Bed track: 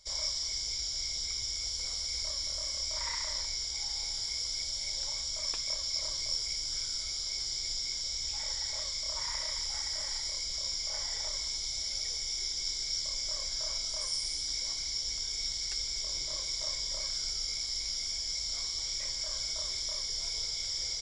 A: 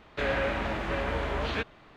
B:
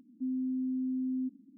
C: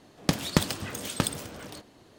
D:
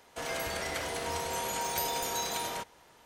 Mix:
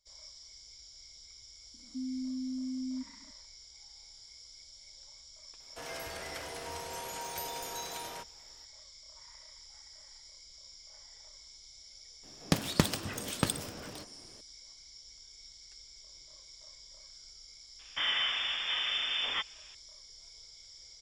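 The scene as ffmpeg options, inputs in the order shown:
ffmpeg -i bed.wav -i cue0.wav -i cue1.wav -i cue2.wav -i cue3.wav -filter_complex "[0:a]volume=-18dB[link_01];[4:a]bandreject=frequency=210:width=6.4[link_02];[1:a]lowpass=frequency=3100:width_type=q:width=0.5098,lowpass=frequency=3100:width_type=q:width=0.6013,lowpass=frequency=3100:width_type=q:width=0.9,lowpass=frequency=3100:width_type=q:width=2.563,afreqshift=-3600[link_03];[2:a]atrim=end=1.57,asetpts=PTS-STARTPTS,volume=-4dB,afade=type=in:duration=0.004:curve=hsin,afade=type=out:start_time=1.566:duration=0.004:curve=hsin,adelay=1740[link_04];[link_02]atrim=end=3.05,asetpts=PTS-STARTPTS,volume=-7dB,afade=type=in:duration=0.004:curve=hsin,afade=type=out:start_time=3.046:duration=0.004:curve=hsin,adelay=5600[link_05];[3:a]atrim=end=2.18,asetpts=PTS-STARTPTS,volume=-3dB,afade=type=in:duration=0.004:curve=hsin,afade=type=out:start_time=2.176:duration=0.004:curve=hsin,adelay=12230[link_06];[link_03]atrim=end=1.96,asetpts=PTS-STARTPTS,volume=-3dB,afade=type=in:duration=0.004:curve=hsin,afade=type=out:start_time=1.956:duration=0.004:curve=hsin,adelay=17790[link_07];[link_01][link_04][link_05][link_06][link_07]amix=inputs=5:normalize=0" out.wav

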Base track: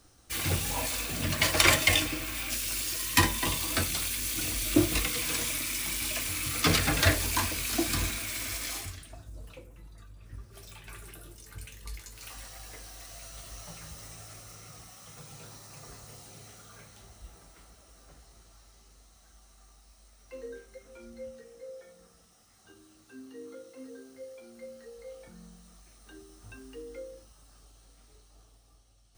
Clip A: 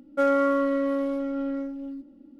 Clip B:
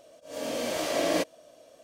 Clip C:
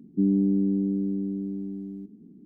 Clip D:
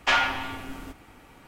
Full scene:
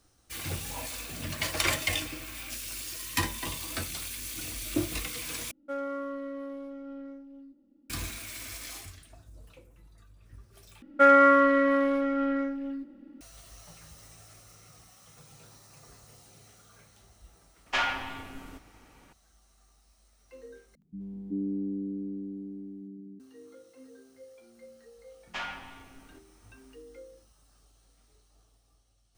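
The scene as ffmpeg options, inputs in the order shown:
ffmpeg -i bed.wav -i cue0.wav -i cue1.wav -i cue2.wav -i cue3.wav -filter_complex "[1:a]asplit=2[link_01][link_02];[4:a]asplit=2[link_03][link_04];[0:a]volume=-6dB[link_05];[link_02]equalizer=frequency=1800:width_type=o:width=1.3:gain=13[link_06];[3:a]acrossover=split=160|550[link_07][link_08][link_09];[link_09]adelay=70[link_10];[link_08]adelay=380[link_11];[link_07][link_11][link_10]amix=inputs=3:normalize=0[link_12];[link_05]asplit=4[link_13][link_14][link_15][link_16];[link_13]atrim=end=5.514[link_17];[link_01]atrim=end=2.39,asetpts=PTS-STARTPTS,volume=-13dB[link_18];[link_14]atrim=start=7.896:end=10.824[link_19];[link_06]atrim=end=2.39[link_20];[link_15]atrim=start=13.206:end=20.754[link_21];[link_12]atrim=end=2.45,asetpts=PTS-STARTPTS,volume=-6.5dB[link_22];[link_16]atrim=start=23.196[link_23];[link_03]atrim=end=1.47,asetpts=PTS-STARTPTS,volume=-6dB,afade=type=in:duration=0.004:curve=hsin,afade=type=out:start_time=1.466:duration=0.004:curve=hsin,adelay=17660[link_24];[link_04]atrim=end=1.47,asetpts=PTS-STARTPTS,volume=-15dB,afade=type=in:duration=0.004:curve=hsin,afade=type=out:start_time=1.466:duration=0.004:curve=hsin,adelay=25270[link_25];[link_17][link_18]acrossfade=duration=0.004:curve1=hsin:curve2=hsin[link_26];[link_26][link_19]acrossfade=duration=0.004:curve1=hsin:curve2=hsin[link_27];[link_27][link_20]acrossfade=duration=0.004:curve1=hsin:curve2=hsin[link_28];[link_28][link_21]acrossfade=duration=0.004:curve1=hsin:curve2=hsin[link_29];[link_29][link_22]acrossfade=duration=0.004:curve1=hsin:curve2=hsin[link_30];[link_30][link_23]acrossfade=duration=0.004:curve1=hsin:curve2=hsin[link_31];[link_31][link_24][link_25]amix=inputs=3:normalize=0" out.wav

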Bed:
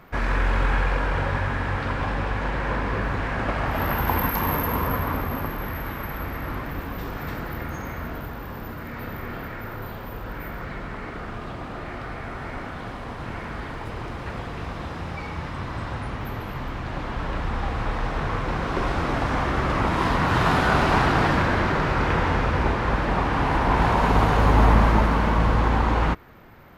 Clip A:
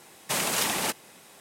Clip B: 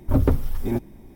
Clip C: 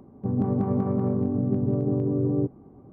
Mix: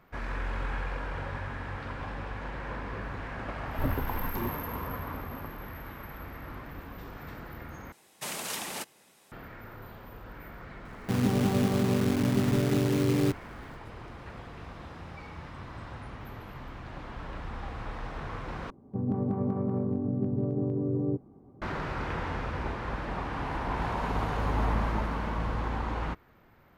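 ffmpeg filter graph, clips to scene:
ffmpeg -i bed.wav -i cue0.wav -i cue1.wav -i cue2.wav -filter_complex "[3:a]asplit=2[link_01][link_02];[0:a]volume=-11.5dB[link_03];[2:a]alimiter=limit=-8.5dB:level=0:latency=1:release=446[link_04];[link_01]acrusher=bits=6:dc=4:mix=0:aa=0.000001[link_05];[link_03]asplit=3[link_06][link_07][link_08];[link_06]atrim=end=7.924[link_09];[1:a]atrim=end=1.4,asetpts=PTS-STARTPTS,volume=-9dB[link_10];[link_07]atrim=start=9.316:end=18.704[link_11];[link_02]atrim=end=2.92,asetpts=PTS-STARTPTS,volume=-5dB[link_12];[link_08]atrim=start=21.616[link_13];[link_04]atrim=end=1.15,asetpts=PTS-STARTPTS,volume=-10dB,afade=type=in:duration=0.004:curve=hsin,afade=type=out:start_time=1.146:duration=0.004:curve=hsin,adelay=3700[link_14];[link_05]atrim=end=2.92,asetpts=PTS-STARTPTS,volume=-1.5dB,afade=type=in:duration=0.004:curve=hsin,afade=type=out:start_time=2.916:duration=0.004:curve=hsin,adelay=10850[link_15];[link_09][link_10]acrossfade=duration=0.004:curve1=hsin:curve2=hsin[link_16];[link_16][link_11]acrossfade=duration=0.004:curve1=hsin:curve2=hsin[link_17];[link_17][link_12]acrossfade=duration=0.004:curve1=hsin:curve2=hsin[link_18];[link_18][link_13]acrossfade=duration=0.004:curve1=hsin:curve2=hsin[link_19];[link_19][link_14][link_15]amix=inputs=3:normalize=0" out.wav

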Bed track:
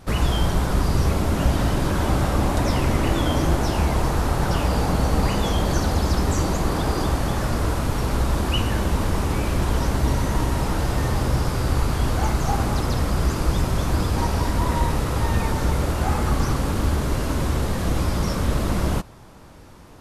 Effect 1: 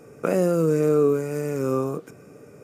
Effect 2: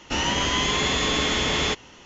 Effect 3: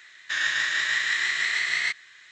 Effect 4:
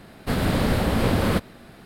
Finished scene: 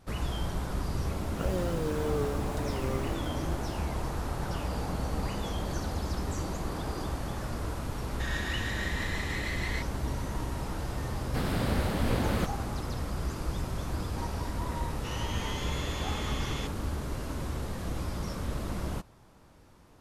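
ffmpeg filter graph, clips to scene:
ffmpeg -i bed.wav -i cue0.wav -i cue1.wav -i cue2.wav -i cue3.wav -filter_complex "[0:a]volume=-12dB[link_01];[1:a]acrusher=bits=6:mix=0:aa=0.000001[link_02];[3:a]aecho=1:1:5.9:0.65[link_03];[2:a]asuperstop=centerf=720:order=4:qfactor=5.4[link_04];[link_02]atrim=end=2.63,asetpts=PTS-STARTPTS,volume=-13dB,afade=type=in:duration=0.004:curve=hsin,afade=type=out:start_time=2.626:duration=0.004:curve=hsin,adelay=1160[link_05];[link_03]atrim=end=2.31,asetpts=PTS-STARTPTS,volume=-13.5dB,afade=type=in:duration=0.004:curve=hsin,afade=type=out:start_time=2.306:duration=0.004:curve=hsin,adelay=7900[link_06];[4:a]atrim=end=1.85,asetpts=PTS-STARTPTS,volume=-8.5dB,afade=type=in:duration=0.004:curve=hsin,afade=type=out:start_time=1.846:duration=0.004:curve=hsin,adelay=11070[link_07];[link_04]atrim=end=2.05,asetpts=PTS-STARTPTS,volume=-16dB,afade=type=in:duration=0.004:curve=hsin,afade=type=out:start_time=2.046:duration=0.004:curve=hsin,adelay=14930[link_08];[link_01][link_05][link_06][link_07][link_08]amix=inputs=5:normalize=0" out.wav

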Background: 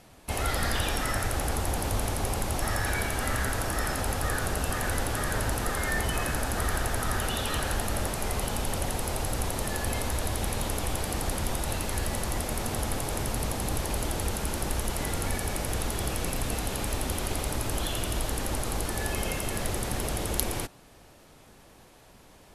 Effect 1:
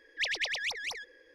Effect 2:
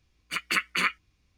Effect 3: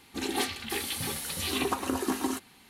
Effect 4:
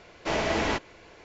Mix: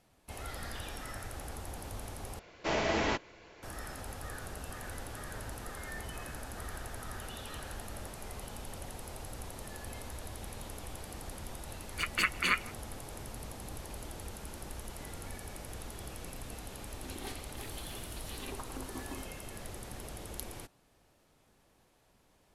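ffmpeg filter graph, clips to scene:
ffmpeg -i bed.wav -i cue0.wav -i cue1.wav -i cue2.wav -i cue3.wav -filter_complex "[0:a]volume=-14dB[link_01];[2:a]asplit=2[link_02][link_03];[link_03]adelay=160,highpass=300,lowpass=3400,asoftclip=type=hard:threshold=-18dB,volume=-20dB[link_04];[link_02][link_04]amix=inputs=2:normalize=0[link_05];[link_01]asplit=2[link_06][link_07];[link_06]atrim=end=2.394[link_08];[4:a]atrim=end=1.24,asetpts=PTS-STARTPTS,volume=-4dB[link_09];[link_07]atrim=start=3.626[link_10];[link_05]atrim=end=1.37,asetpts=PTS-STARTPTS,volume=-3.5dB,afade=type=in:duration=0.004:curve=hsin,afade=type=out:start_time=1.366:duration=0.004:curve=hsin,adelay=11670[link_11];[3:a]atrim=end=2.69,asetpts=PTS-STARTPTS,volume=-15.5dB,afade=type=in:duration=0.004:curve=hsin,afade=type=out:start_time=2.686:duration=0.004:curve=hsin,adelay=16870[link_12];[link_08][link_09]acrossfade=duration=0.004:curve1=hsin:curve2=hsin[link_13];[link_13][link_10]acrossfade=duration=0.004:curve1=hsin:curve2=hsin[link_14];[link_14][link_11][link_12]amix=inputs=3:normalize=0" out.wav

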